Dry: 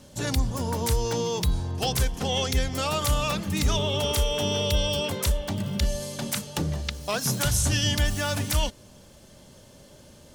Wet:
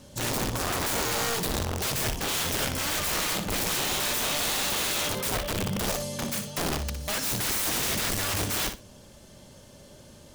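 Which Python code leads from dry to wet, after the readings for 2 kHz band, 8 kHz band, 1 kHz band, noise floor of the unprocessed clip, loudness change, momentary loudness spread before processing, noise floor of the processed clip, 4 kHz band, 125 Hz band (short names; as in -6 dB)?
+2.5 dB, +2.0 dB, 0.0 dB, -51 dBFS, -0.5 dB, 6 LU, -51 dBFS, -1.0 dB, -8.0 dB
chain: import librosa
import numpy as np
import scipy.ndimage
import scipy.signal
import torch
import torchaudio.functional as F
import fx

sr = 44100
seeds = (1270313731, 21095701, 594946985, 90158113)

y = (np.mod(10.0 ** (23.5 / 20.0) * x + 1.0, 2.0) - 1.0) / 10.0 ** (23.5 / 20.0)
y = fx.echo_feedback(y, sr, ms=60, feedback_pct=16, wet_db=-9.0)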